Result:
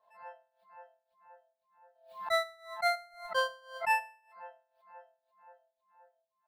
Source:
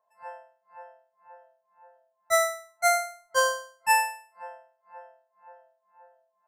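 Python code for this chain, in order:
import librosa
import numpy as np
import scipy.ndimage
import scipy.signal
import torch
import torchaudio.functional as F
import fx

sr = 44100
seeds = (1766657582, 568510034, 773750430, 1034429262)

y = fx.high_shelf_res(x, sr, hz=5000.0, db=-8.5, q=3.0)
y = fx.dereverb_blind(y, sr, rt60_s=0.65)
y = fx.pre_swell(y, sr, db_per_s=120.0)
y = y * librosa.db_to_amplitude(-7.0)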